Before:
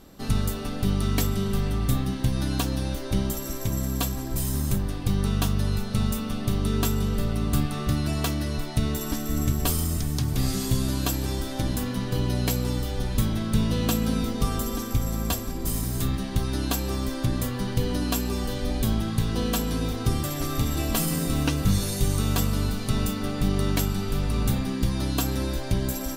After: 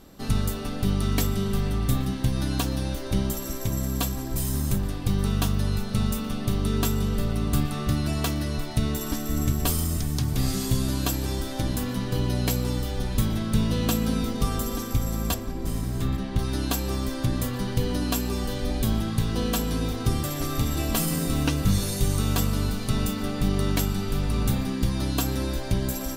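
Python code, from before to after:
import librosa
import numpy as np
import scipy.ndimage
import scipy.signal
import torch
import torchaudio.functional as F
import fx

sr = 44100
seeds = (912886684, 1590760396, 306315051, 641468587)

y = fx.lowpass(x, sr, hz=2900.0, slope=6, at=(15.34, 16.39))
y = y + 10.0 ** (-23.0 / 20.0) * np.pad(y, (int(824 * sr / 1000.0), 0))[:len(y)]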